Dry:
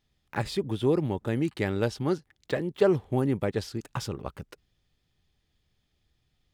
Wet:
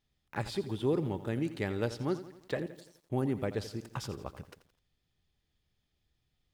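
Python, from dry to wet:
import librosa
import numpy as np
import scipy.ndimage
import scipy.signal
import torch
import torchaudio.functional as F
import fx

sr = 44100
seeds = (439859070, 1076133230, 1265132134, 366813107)

y = fx.cheby2_highpass(x, sr, hz=1900.0, order=4, stop_db=50, at=(2.66, 3.1))
y = fx.echo_crushed(y, sr, ms=85, feedback_pct=55, bits=9, wet_db=-13.5)
y = y * librosa.db_to_amplitude(-5.5)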